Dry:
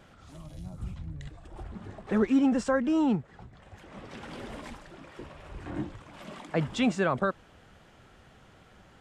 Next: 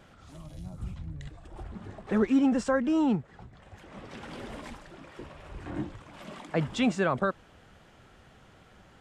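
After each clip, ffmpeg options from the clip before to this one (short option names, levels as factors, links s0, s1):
-af anull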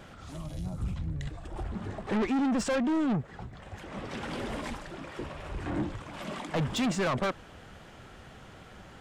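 -af "asoftclip=type=tanh:threshold=0.0266,volume=2.11"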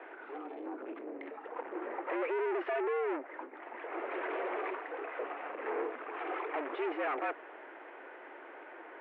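-af "volume=50.1,asoftclip=hard,volume=0.02,highpass=f=200:t=q:w=0.5412,highpass=f=200:t=q:w=1.307,lowpass=f=2300:t=q:w=0.5176,lowpass=f=2300:t=q:w=0.7071,lowpass=f=2300:t=q:w=1.932,afreqshift=140,volume=1.33"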